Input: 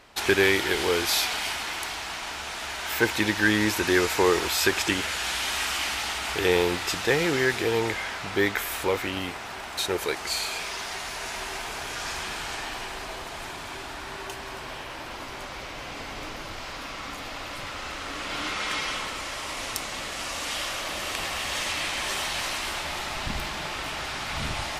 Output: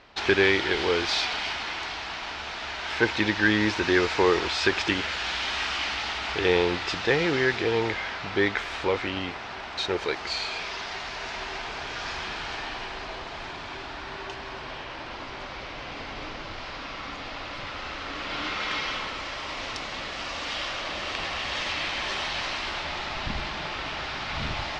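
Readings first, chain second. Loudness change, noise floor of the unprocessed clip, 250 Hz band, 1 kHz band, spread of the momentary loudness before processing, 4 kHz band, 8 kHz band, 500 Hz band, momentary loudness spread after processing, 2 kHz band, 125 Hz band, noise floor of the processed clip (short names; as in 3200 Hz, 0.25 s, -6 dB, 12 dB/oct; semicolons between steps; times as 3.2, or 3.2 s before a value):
-0.5 dB, -38 dBFS, 0.0 dB, 0.0 dB, 14 LU, -0.5 dB, -10.5 dB, 0.0 dB, 14 LU, 0.0 dB, 0.0 dB, -38 dBFS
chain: LPF 5100 Hz 24 dB/oct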